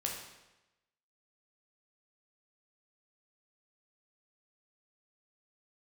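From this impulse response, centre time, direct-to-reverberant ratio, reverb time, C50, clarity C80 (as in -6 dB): 46 ms, -1.0 dB, 1.0 s, 3.5 dB, 6.0 dB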